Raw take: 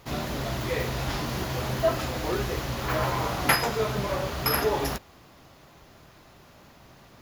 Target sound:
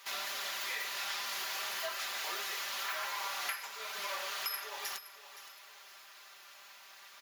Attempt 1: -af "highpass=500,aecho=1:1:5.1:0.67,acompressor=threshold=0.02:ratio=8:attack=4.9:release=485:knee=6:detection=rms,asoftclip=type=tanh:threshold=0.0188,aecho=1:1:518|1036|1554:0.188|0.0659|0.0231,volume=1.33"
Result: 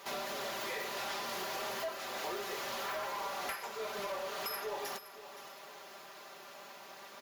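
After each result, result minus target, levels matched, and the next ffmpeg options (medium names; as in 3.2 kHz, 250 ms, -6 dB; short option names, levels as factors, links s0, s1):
500 Hz band +11.0 dB; saturation: distortion +13 dB
-af "highpass=1500,aecho=1:1:5.1:0.67,acompressor=threshold=0.02:ratio=8:attack=4.9:release=485:knee=6:detection=rms,asoftclip=type=tanh:threshold=0.0188,aecho=1:1:518|1036|1554:0.188|0.0659|0.0231,volume=1.33"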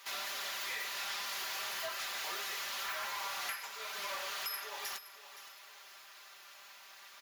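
saturation: distortion +12 dB
-af "highpass=1500,aecho=1:1:5.1:0.67,acompressor=threshold=0.02:ratio=8:attack=4.9:release=485:knee=6:detection=rms,asoftclip=type=tanh:threshold=0.0501,aecho=1:1:518|1036|1554:0.188|0.0659|0.0231,volume=1.33"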